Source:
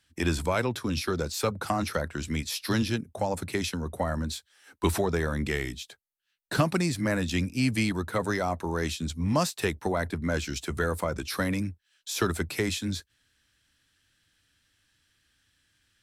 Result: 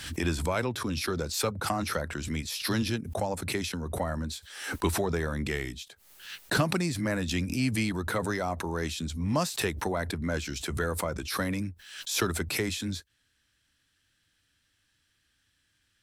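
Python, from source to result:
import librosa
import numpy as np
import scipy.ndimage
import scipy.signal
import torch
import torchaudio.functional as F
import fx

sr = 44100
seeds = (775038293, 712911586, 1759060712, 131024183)

y = fx.pre_swell(x, sr, db_per_s=69.0)
y = F.gain(torch.from_numpy(y), -2.5).numpy()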